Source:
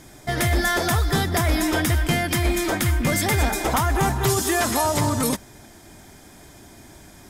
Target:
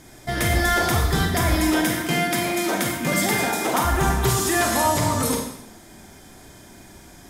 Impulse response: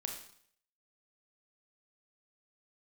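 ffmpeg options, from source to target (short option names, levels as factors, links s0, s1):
-filter_complex "[0:a]asettb=1/sr,asplit=3[s0][s1][s2];[s0]atrim=end=1.564[s3];[s1]atrim=start=1.56:end=3.85,asetpts=PTS-STARTPTS,afade=t=in:d=0.004:c=qsin,afade=t=out:st=2.286:d=0.004:c=qsin,highpass=f=150:w=0.5412,highpass=f=150:w=1.3066[s4];[s2]atrim=start=3.846[s5];[s3][s4]acrossfade=d=0.004:c1=hsin:c2=qsin[s6];[s6][s5]acrossfade=d=0.004:c1=qsin:c2=hsin[s7];[1:a]atrim=start_sample=2205,asetrate=37044,aresample=44100[s8];[s7][s8]afir=irnorm=-1:irlink=0"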